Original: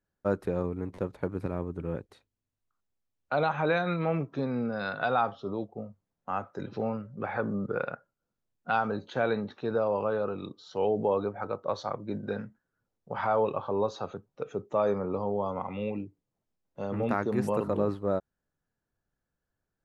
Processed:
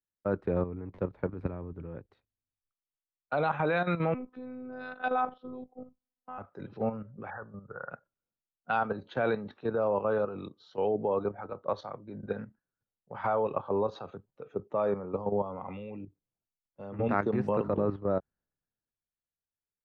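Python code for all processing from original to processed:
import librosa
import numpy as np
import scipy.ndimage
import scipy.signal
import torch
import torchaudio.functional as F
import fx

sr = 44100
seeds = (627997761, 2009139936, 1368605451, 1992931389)

y = fx.chain(x, sr, fx.robotise(hz=253.0),
    fx.air_absorb(metres=120.0), at=(4.14, 6.38))
y = fx.chain(y, sr, fx.brickwall_lowpass(high_hz=1900.0),
    fx.peak_eq(hz=290.0, db=-12.5, octaves=2.1), at=(7.3, 7.91))
y = scipy.signal.sosfilt(scipy.signal.butter(2, 2900.0, 'lowpass', fs=sr, output='sos'), y)
y = fx.level_steps(y, sr, step_db=10)
y = fx.band_widen(y, sr, depth_pct=40)
y = y * 10.0 ** (2.5 / 20.0)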